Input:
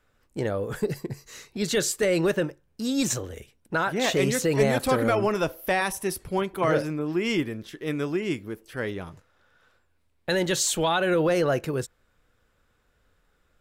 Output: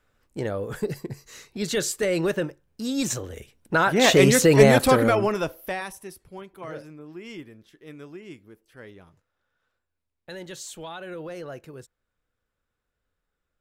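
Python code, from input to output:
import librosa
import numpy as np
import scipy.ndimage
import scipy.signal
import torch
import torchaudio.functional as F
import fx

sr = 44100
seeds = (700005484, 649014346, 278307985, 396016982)

y = fx.gain(x, sr, db=fx.line((3.14, -1.0), (4.09, 7.5), (4.74, 7.5), (5.56, -3.0), (6.2, -14.0)))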